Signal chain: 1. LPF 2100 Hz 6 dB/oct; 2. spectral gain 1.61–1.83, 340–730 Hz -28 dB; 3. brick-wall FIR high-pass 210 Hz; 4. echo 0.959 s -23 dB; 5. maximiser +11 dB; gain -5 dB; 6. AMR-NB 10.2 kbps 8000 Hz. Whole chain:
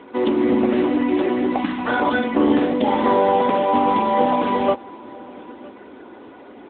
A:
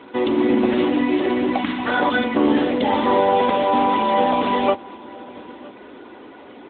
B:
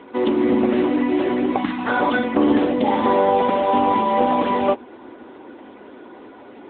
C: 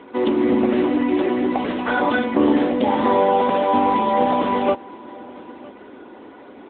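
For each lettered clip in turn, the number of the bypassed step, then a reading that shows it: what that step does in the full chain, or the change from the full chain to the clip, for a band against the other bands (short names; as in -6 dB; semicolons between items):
1, 4 kHz band +4.5 dB; 4, momentary loudness spread change -16 LU; 2, momentary loudness spread change -3 LU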